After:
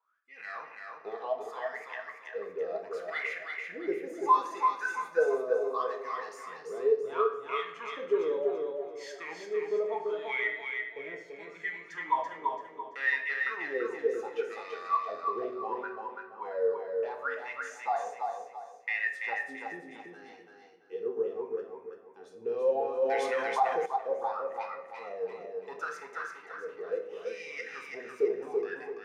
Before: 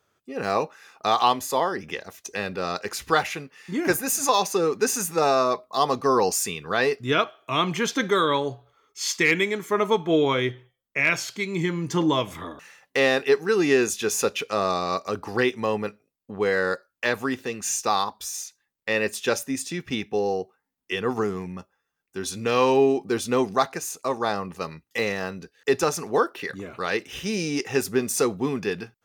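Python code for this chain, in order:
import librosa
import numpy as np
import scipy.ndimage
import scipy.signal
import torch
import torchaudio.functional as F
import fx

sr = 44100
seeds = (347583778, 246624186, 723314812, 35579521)

p1 = fx.high_shelf(x, sr, hz=2800.0, db=9.0)
p2 = np.clip(p1, -10.0 ** (-22.0 / 20.0), 10.0 ** (-22.0 / 20.0))
p3 = p1 + (p2 * librosa.db_to_amplitude(-7.0))
p4 = fx.wah_lfo(p3, sr, hz=0.7, low_hz=410.0, high_hz=2100.0, q=16.0)
p5 = fx.echo_feedback(p4, sr, ms=336, feedback_pct=33, wet_db=-4)
p6 = fx.room_shoebox(p5, sr, seeds[0], volume_m3=200.0, walls='mixed', distance_m=0.64)
y = fx.env_flatten(p6, sr, amount_pct=50, at=(23.02, 23.86))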